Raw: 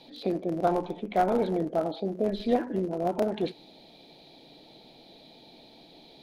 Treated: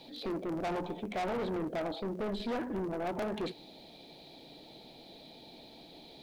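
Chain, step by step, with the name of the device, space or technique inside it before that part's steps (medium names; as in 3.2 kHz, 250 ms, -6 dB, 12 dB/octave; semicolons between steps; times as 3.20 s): open-reel tape (saturation -31.5 dBFS, distortion -6 dB; peaking EQ 67 Hz +4.5 dB; white noise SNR 39 dB)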